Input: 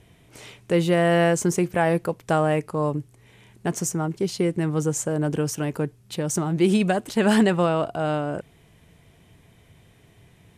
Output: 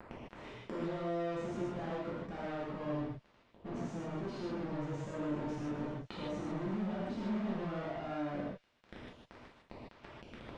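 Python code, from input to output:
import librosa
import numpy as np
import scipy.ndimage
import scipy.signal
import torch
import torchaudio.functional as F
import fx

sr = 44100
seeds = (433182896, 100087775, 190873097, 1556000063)

y = fx.dynamic_eq(x, sr, hz=270.0, q=0.92, threshold_db=-33.0, ratio=4.0, max_db=6)
y = fx.leveller(y, sr, passes=1)
y = fx.fuzz(y, sr, gain_db=39.0, gate_db=-47.0)
y = fx.gate_flip(y, sr, shuts_db=-23.0, range_db=-30)
y = np.clip(y, -10.0 ** (-26.5 / 20.0), 10.0 ** (-26.5 / 20.0))
y = fx.spacing_loss(y, sr, db_at_10k=35)
y = fx.echo_wet_highpass(y, sr, ms=129, feedback_pct=64, hz=4100.0, wet_db=-11.5)
y = fx.rev_gated(y, sr, seeds[0], gate_ms=180, shape='flat', drr_db=-7.5)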